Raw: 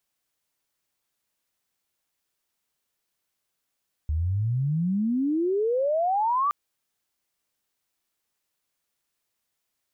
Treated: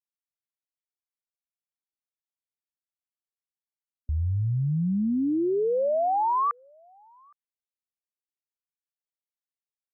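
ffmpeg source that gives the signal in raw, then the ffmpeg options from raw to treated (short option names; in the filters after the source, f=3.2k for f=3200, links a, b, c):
-f lavfi -i "aevalsrc='pow(10,(-22.5+2*t/2.42)/20)*sin(2*PI*73*2.42/log(1200/73)*(exp(log(1200/73)*t/2.42)-1))':d=2.42:s=44100"
-filter_complex "[0:a]afftdn=nr=28:nf=-46,asplit=2[a][b];[b]adelay=816.3,volume=-30dB,highshelf=f=4k:g=-18.4[c];[a][c]amix=inputs=2:normalize=0"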